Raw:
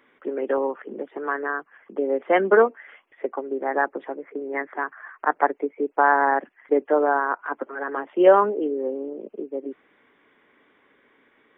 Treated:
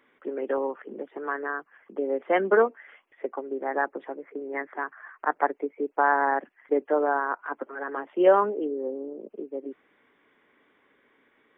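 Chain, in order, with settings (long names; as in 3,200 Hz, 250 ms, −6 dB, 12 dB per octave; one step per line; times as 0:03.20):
0:08.65–0:09.31: parametric band 2,700 Hz −8 dB 1.5 octaves
level −4 dB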